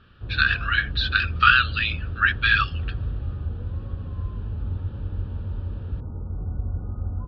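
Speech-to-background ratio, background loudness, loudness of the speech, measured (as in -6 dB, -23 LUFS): 10.5 dB, -31.5 LUFS, -21.0 LUFS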